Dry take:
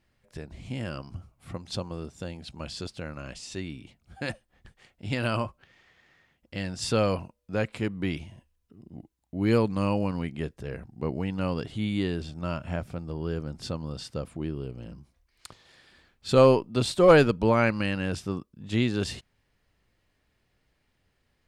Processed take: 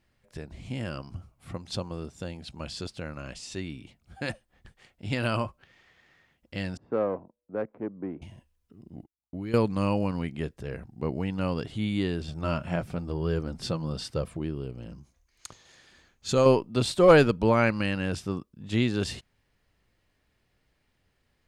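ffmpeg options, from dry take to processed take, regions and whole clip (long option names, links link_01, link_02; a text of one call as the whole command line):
ffmpeg -i in.wav -filter_complex "[0:a]asettb=1/sr,asplit=3[link_01][link_02][link_03];[link_01]atrim=end=6.774[link_04];[link_02]atrim=start=6.77:end=8.22,asetpts=PTS-STARTPTS,afade=type=in:duration=0.004:curve=qsin,afade=type=out:start_time=1.446:duration=0.004:curve=qsin,adynamicsmooth=sensitivity=0.5:basefreq=570,acrossover=split=230 2000:gain=0.112 1 0.112[link_05][link_06][link_07];[link_05][link_06][link_07]amix=inputs=3:normalize=0[link_08];[link_03]atrim=start=8.216[link_09];[link_04][link_08]acrossfade=duration=0.004:curve1=hsin:curve2=qsin[link_10];[link_10][link_09]acrossfade=duration=0.004:curve1=qsin:curve2=hsin,asettb=1/sr,asplit=3[link_11][link_12][link_13];[link_11]atrim=end=8.964[link_14];[link_12]atrim=start=8.96:end=9.54,asetpts=PTS-STARTPTS,afade=type=in:duration=0.004:curve=qsin,afade=type=out:start_time=0.576:duration=0.004:curve=qsin,agate=range=-22dB:threshold=-50dB:ratio=16:release=100:detection=peak,acompressor=threshold=-31dB:ratio=8:attack=3.2:release=140:knee=1:detection=peak[link_15];[link_13]atrim=start=9.536[link_16];[link_14][link_15]acrossfade=duration=0.004:curve1=hsin:curve2=qsin[link_17];[link_17][link_16]acrossfade=duration=0.004:curve1=qsin:curve2=hsin,asettb=1/sr,asplit=3[link_18][link_19][link_20];[link_18]atrim=end=12.284[link_21];[link_19]atrim=start=12.28:end=14.39,asetpts=PTS-STARTPTS,afade=type=in:duration=0.004:curve=qsin,afade=type=out:start_time=2.106:duration=0.004:curve=qsin,bandreject=frequency=6900:width=29,acontrast=81,flanger=delay=1.7:depth=4.4:regen=-47:speed=1:shape=sinusoidal[link_22];[link_20]atrim=start=14.386[link_23];[link_21][link_22]acrossfade=duration=0.004:curve1=hsin:curve2=qsin[link_24];[link_24][link_23]acrossfade=duration=0.004:curve1=qsin:curve2=hsin,asettb=1/sr,asplit=3[link_25][link_26][link_27];[link_25]atrim=end=14.904[link_28];[link_26]atrim=start=14.9:end=16.46,asetpts=PTS-STARTPTS,afade=type=in:duration=0.004:curve=qsin,afade=type=out:start_time=1.556:duration=0.004:curve=qsin,equalizer=frequency=6500:width=6.3:gain=14,acompressor=threshold=-25dB:ratio=1.5:attack=3.2:release=140:knee=1:detection=peak[link_29];[link_27]atrim=start=16.456[link_30];[link_28][link_29]acrossfade=duration=0.004:curve1=hsin:curve2=qsin[link_31];[link_31][link_30]acrossfade=duration=0.004:curve1=qsin:curve2=hsin" out.wav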